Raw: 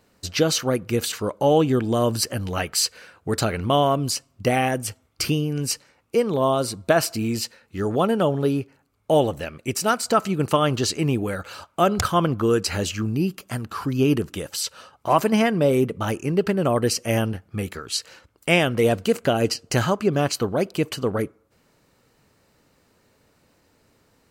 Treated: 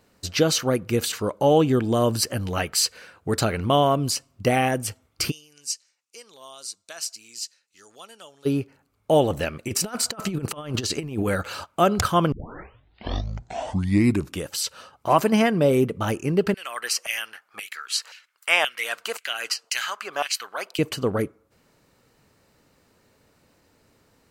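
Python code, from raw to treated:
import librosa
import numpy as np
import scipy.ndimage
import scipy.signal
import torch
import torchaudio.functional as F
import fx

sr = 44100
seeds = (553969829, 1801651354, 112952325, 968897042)

y = fx.bandpass_q(x, sr, hz=6500.0, q=1.8, at=(5.3, 8.45), fade=0.02)
y = fx.over_compress(y, sr, threshold_db=-26.0, ratio=-0.5, at=(9.3, 11.66))
y = fx.filter_lfo_highpass(y, sr, shape='saw_down', hz=1.9, low_hz=850.0, high_hz=2700.0, q=1.8, at=(16.54, 20.79))
y = fx.edit(y, sr, fx.tape_start(start_s=12.32, length_s=2.13), tone=tone)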